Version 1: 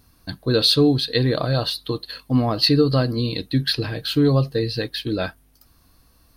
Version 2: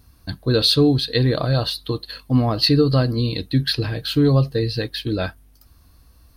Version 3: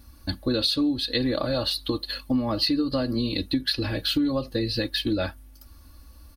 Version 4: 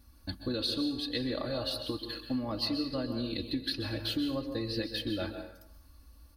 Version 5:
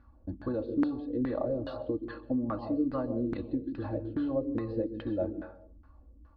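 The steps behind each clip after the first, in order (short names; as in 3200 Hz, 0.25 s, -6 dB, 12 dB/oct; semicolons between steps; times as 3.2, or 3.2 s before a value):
bell 64 Hz +9.5 dB 1.3 oct
comb 3.5 ms, depth 82%; compressor 5:1, threshold -22 dBFS, peak gain reduction 12 dB
plate-style reverb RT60 0.79 s, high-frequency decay 0.7×, pre-delay 0.115 s, DRR 6.5 dB; gain -9 dB
LFO low-pass saw down 2.4 Hz 260–1500 Hz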